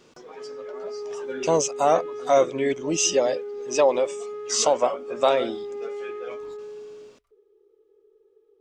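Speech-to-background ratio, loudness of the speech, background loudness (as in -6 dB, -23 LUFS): 12.5 dB, -23.0 LUFS, -35.5 LUFS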